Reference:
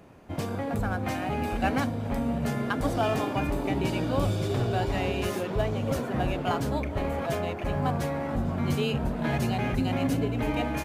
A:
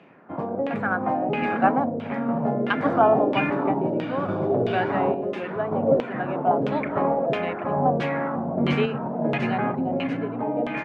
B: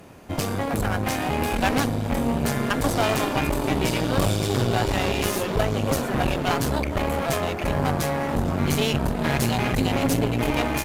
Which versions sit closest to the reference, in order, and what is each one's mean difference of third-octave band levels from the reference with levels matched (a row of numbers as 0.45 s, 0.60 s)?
B, A; 4.0 dB, 9.5 dB